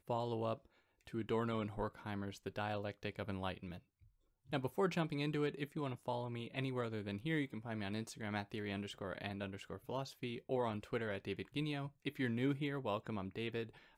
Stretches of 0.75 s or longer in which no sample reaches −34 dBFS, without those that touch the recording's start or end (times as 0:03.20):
0:03.52–0:04.53